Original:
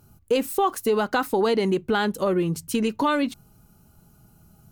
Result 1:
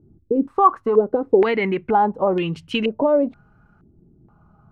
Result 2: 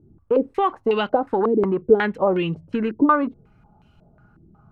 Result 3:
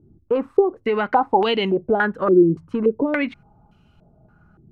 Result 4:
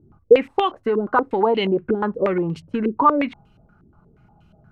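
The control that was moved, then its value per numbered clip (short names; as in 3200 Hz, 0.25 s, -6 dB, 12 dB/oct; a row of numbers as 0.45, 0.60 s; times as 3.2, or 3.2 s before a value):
stepped low-pass, rate: 2.1, 5.5, 3.5, 8.4 Hz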